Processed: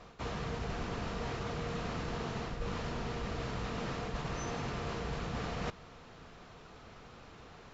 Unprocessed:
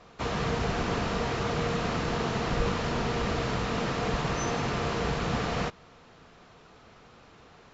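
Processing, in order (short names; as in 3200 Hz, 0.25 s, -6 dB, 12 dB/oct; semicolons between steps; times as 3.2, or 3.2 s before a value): low shelf 83 Hz +6.5 dB; reverse; compressor 6:1, threshold -35 dBFS, peak gain reduction 16.5 dB; reverse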